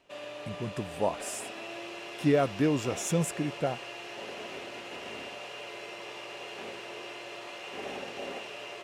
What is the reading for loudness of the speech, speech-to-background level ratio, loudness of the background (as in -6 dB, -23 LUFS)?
-30.5 LUFS, 10.0 dB, -40.5 LUFS